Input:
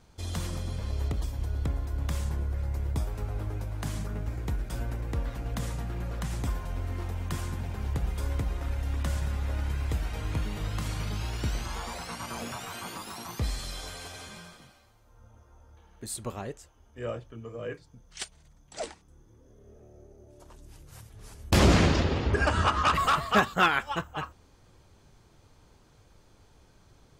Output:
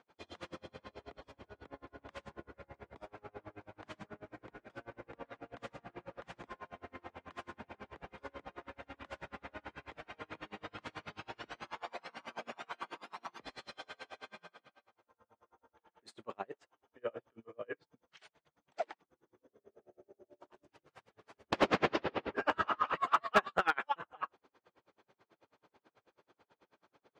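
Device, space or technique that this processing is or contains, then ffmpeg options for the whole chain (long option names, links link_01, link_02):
helicopter radio: -af "highpass=360,lowpass=2600,aeval=exprs='val(0)*pow(10,-36*(0.5-0.5*cos(2*PI*9.2*n/s))/20)':channel_layout=same,asoftclip=type=hard:threshold=-20.5dB,volume=2.5dB"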